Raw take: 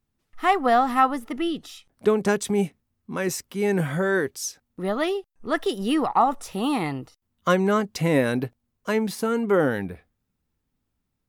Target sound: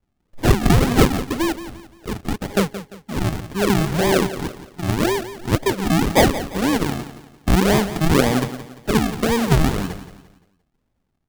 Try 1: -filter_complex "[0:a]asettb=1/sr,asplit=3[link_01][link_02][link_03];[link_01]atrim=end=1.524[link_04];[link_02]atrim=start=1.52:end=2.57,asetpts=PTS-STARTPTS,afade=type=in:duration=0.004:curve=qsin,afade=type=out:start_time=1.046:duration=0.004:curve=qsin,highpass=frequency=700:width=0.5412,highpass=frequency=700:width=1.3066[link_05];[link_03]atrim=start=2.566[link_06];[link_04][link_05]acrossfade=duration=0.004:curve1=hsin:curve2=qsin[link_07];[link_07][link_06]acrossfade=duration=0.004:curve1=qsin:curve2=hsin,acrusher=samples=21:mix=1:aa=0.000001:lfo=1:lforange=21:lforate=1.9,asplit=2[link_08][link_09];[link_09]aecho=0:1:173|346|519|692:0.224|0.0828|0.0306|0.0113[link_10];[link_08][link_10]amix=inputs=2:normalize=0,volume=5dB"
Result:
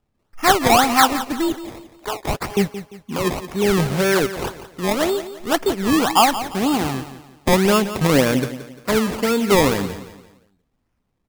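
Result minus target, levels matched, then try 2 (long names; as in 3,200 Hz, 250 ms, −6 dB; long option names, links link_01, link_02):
sample-and-hold swept by an LFO: distortion −14 dB
-filter_complex "[0:a]asettb=1/sr,asplit=3[link_01][link_02][link_03];[link_01]atrim=end=1.524[link_04];[link_02]atrim=start=1.52:end=2.57,asetpts=PTS-STARTPTS,afade=type=in:duration=0.004:curve=qsin,afade=type=out:start_time=1.046:duration=0.004:curve=qsin,highpass=frequency=700:width=0.5412,highpass=frequency=700:width=1.3066[link_05];[link_03]atrim=start=2.566[link_06];[link_04][link_05]acrossfade=duration=0.004:curve1=hsin:curve2=qsin[link_07];[link_07][link_06]acrossfade=duration=0.004:curve1=qsin:curve2=hsin,acrusher=samples=62:mix=1:aa=0.000001:lfo=1:lforange=62:lforate=1.9,asplit=2[link_08][link_09];[link_09]aecho=0:1:173|346|519|692:0.224|0.0828|0.0306|0.0113[link_10];[link_08][link_10]amix=inputs=2:normalize=0,volume=5dB"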